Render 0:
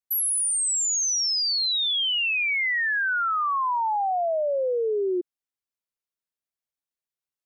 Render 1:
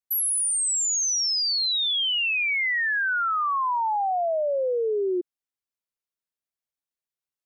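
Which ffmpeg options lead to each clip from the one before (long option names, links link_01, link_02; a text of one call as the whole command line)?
ffmpeg -i in.wav -af anull out.wav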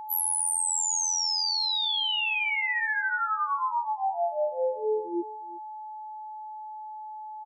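ffmpeg -i in.wav -af "afftfilt=real='hypot(re,im)*cos(PI*b)':imag='0':win_size=2048:overlap=0.75,aeval=exprs='val(0)+0.0158*sin(2*PI*860*n/s)':channel_layout=same,aecho=1:1:361:0.106" out.wav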